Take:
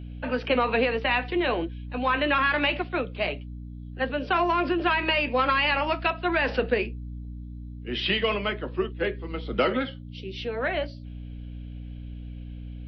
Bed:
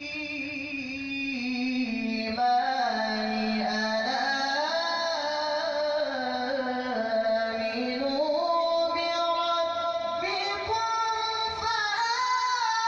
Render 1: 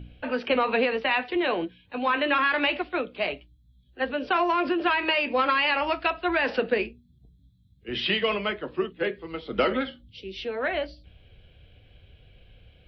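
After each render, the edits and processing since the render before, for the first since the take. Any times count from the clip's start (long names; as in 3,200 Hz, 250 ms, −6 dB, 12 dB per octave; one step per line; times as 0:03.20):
hum removal 60 Hz, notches 5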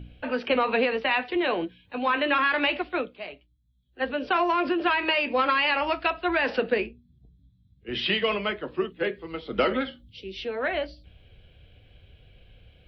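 0:03.03–0:04.04: duck −10 dB, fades 0.14 s
0:06.80–0:07.89: high-frequency loss of the air 170 metres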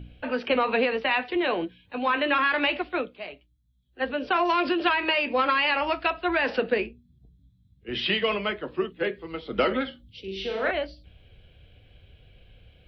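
0:04.45–0:04.89: parametric band 4,200 Hz +8 dB 1.4 octaves
0:10.20–0:10.71: flutter between parallel walls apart 7.1 metres, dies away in 0.73 s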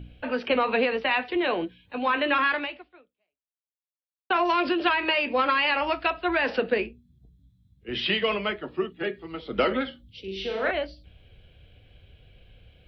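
0:02.51–0:04.30: fade out exponential
0:08.56–0:09.40: notch comb filter 520 Hz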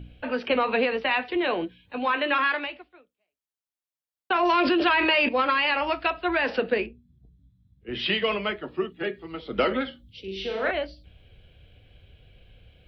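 0:02.05–0:02.66: low-shelf EQ 150 Hz −12 dB
0:04.43–0:05.29: envelope flattener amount 70%
0:06.86–0:08.00: high-shelf EQ 3,800 Hz −11 dB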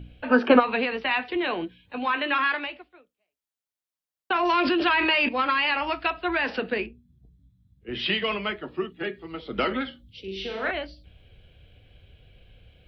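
0:00.31–0:00.60: gain on a spectral selection 210–1,800 Hz +12 dB
dynamic equaliser 530 Hz, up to −6 dB, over −37 dBFS, Q 2.3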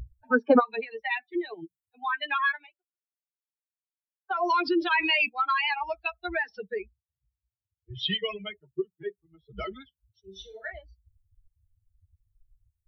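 spectral dynamics exaggerated over time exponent 3
in parallel at +2 dB: downward compressor, threshold −36 dBFS, peak gain reduction 19 dB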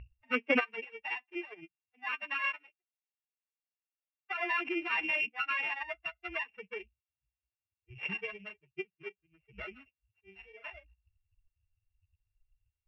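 samples sorted by size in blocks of 16 samples
transistor ladder low-pass 2,600 Hz, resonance 60%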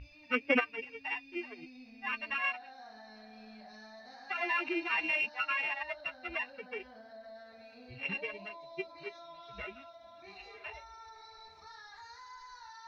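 mix in bed −24.5 dB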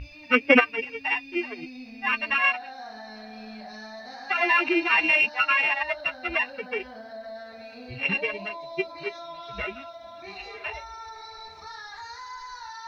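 level +11 dB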